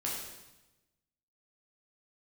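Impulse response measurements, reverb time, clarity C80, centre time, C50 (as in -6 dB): 1.0 s, 4.0 dB, 63 ms, 1.0 dB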